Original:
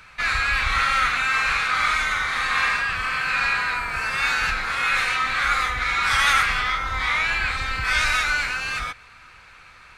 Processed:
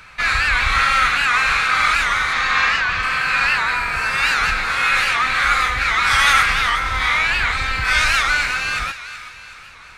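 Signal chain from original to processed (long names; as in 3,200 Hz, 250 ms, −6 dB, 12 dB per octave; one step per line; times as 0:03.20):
0:02.33–0:03.03: Butterworth low-pass 7,100 Hz
feedback echo with a high-pass in the loop 374 ms, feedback 50%, high-pass 1,100 Hz, level −11.5 dB
wow of a warped record 78 rpm, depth 160 cents
level +4.5 dB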